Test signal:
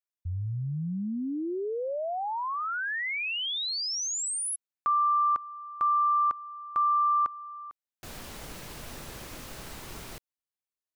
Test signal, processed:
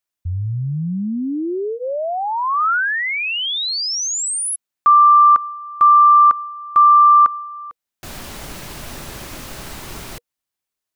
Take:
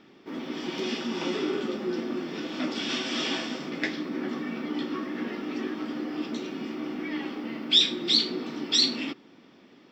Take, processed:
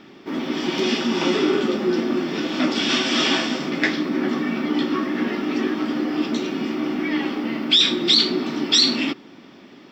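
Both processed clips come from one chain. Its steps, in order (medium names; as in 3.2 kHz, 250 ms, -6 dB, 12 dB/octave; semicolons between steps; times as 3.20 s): band-stop 480 Hz, Q 12; dynamic bell 1.3 kHz, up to +6 dB, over -37 dBFS, Q 1.7; loudness maximiser +14.5 dB; trim -5 dB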